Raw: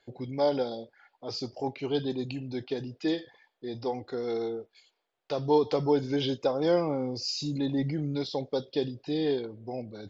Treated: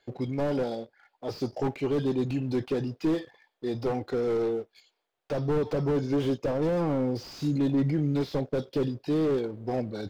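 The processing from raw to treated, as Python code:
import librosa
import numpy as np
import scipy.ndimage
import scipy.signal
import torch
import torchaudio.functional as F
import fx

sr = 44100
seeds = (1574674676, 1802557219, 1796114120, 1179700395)

p1 = fx.dynamic_eq(x, sr, hz=4100.0, q=1.3, threshold_db=-53.0, ratio=4.0, max_db=-5)
p2 = fx.rider(p1, sr, range_db=5, speed_s=0.5)
p3 = p1 + (p2 * librosa.db_to_amplitude(-1.0))
p4 = fx.leveller(p3, sr, passes=1)
p5 = fx.slew_limit(p4, sr, full_power_hz=47.0)
y = p5 * librosa.db_to_amplitude(-4.5)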